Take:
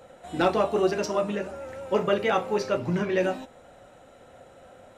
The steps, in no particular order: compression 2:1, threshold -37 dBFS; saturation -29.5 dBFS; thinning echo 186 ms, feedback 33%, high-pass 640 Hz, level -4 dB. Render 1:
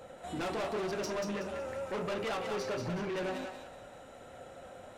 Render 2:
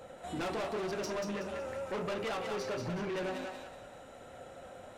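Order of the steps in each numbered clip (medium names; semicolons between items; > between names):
saturation > compression > thinning echo; saturation > thinning echo > compression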